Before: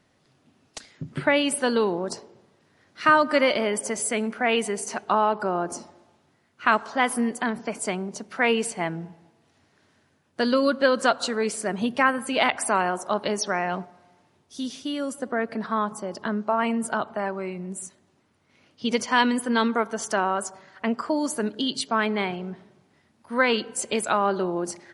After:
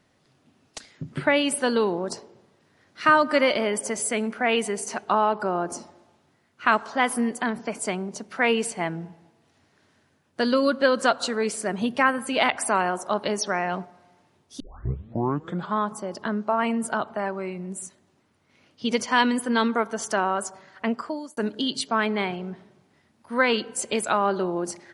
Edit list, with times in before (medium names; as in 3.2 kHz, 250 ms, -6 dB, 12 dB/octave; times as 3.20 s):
14.60 s: tape start 1.19 s
20.88–21.37 s: fade out